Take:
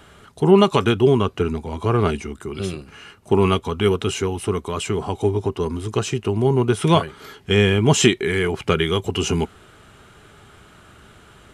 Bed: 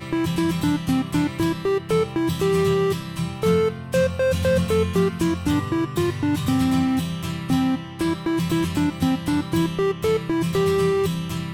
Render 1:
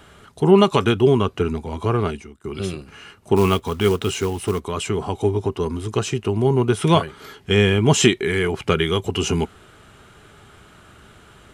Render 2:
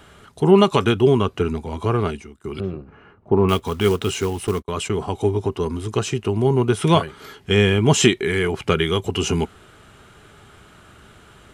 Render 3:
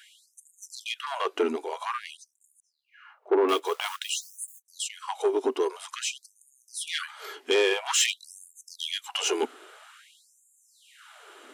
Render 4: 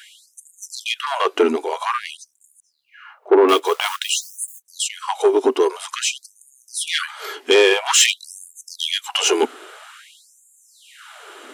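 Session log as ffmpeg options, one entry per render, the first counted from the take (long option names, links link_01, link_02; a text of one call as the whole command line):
ffmpeg -i in.wav -filter_complex "[0:a]asettb=1/sr,asplit=3[link_01][link_02][link_03];[link_01]atrim=end=3.364[link_04];[link_02]atrim=start=3.36:end=4.6,asetpts=PTS-STARTPTS,afade=type=in:duration=0.004:curve=qsin,afade=type=out:start_time=1.236:duration=0.004:curve=qsin,acrusher=bits=5:mode=log:mix=0:aa=0.000001[link_05];[link_03]atrim=start=4.596[link_06];[link_04][link_05]acrossfade=duration=0.004:curve1=hsin:curve2=qsin[link_07];[link_07][link_06]acrossfade=duration=0.004:curve1=qsin:curve2=hsin,asplit=2[link_08][link_09];[link_08]atrim=end=2.44,asetpts=PTS-STARTPTS,afade=type=out:start_time=1.84:duration=0.6:silence=0.0841395[link_10];[link_09]atrim=start=2.44,asetpts=PTS-STARTPTS,afade=type=in:duration=0.004:curve=hsin:silence=0.0841395[link_11];[link_10][link_11]concat=n=2:v=0:a=1" out.wav
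ffmpeg -i in.wav -filter_complex "[0:a]asettb=1/sr,asplit=3[link_01][link_02][link_03];[link_01]atrim=end=2.604[link_04];[link_02]atrim=start=2.6:end=3.49,asetpts=PTS-STARTPTS,afade=type=in:duration=0.004:curve=qsin,afade=type=out:start_time=0.886:duration=0.004:curve=qsin,lowpass=1100[link_05];[link_03]atrim=start=3.486[link_06];[link_04][link_05]acrossfade=duration=0.004:curve1=hsin:curve2=qsin[link_07];[link_07][link_06]acrossfade=duration=0.004:curve1=qsin:curve2=hsin,asettb=1/sr,asplit=3[link_08][link_09][link_10];[link_08]atrim=end=4.474[link_11];[link_09]atrim=start=4.47:end=5.12,asetpts=PTS-STARTPTS,afade=type=in:duration=0.004:curve=qsin,afade=type=out:start_time=0.646:duration=0.004:curve=qsin,agate=range=-37dB:threshold=-32dB:ratio=16:release=100:detection=peak[link_12];[link_10]atrim=start=5.116[link_13];[link_11][link_12]acrossfade=duration=0.004:curve1=hsin:curve2=qsin[link_14];[link_14][link_13]acrossfade=duration=0.004:curve1=qsin:curve2=hsin" out.wav
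ffmpeg -i in.wav -af "asoftclip=type=tanh:threshold=-14.5dB,afftfilt=real='re*gte(b*sr/1024,250*pow(6600/250,0.5+0.5*sin(2*PI*0.5*pts/sr)))':imag='im*gte(b*sr/1024,250*pow(6600/250,0.5+0.5*sin(2*PI*0.5*pts/sr)))':win_size=1024:overlap=0.75" out.wav
ffmpeg -i in.wav -af "volume=9.5dB" out.wav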